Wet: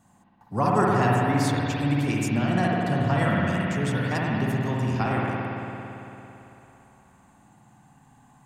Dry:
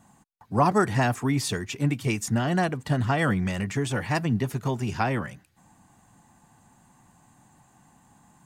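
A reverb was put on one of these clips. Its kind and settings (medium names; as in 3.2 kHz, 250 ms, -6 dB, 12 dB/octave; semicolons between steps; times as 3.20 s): spring tank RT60 3.3 s, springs 56 ms, chirp 50 ms, DRR -4 dB; trim -4 dB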